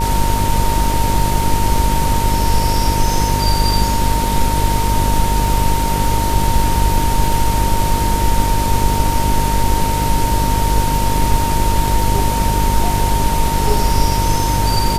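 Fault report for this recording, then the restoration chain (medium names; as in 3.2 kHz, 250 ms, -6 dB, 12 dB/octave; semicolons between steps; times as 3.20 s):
buzz 50 Hz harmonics 12 -19 dBFS
crackle 34 per s -23 dBFS
whine 920 Hz -19 dBFS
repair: de-click; de-hum 50 Hz, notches 12; band-stop 920 Hz, Q 30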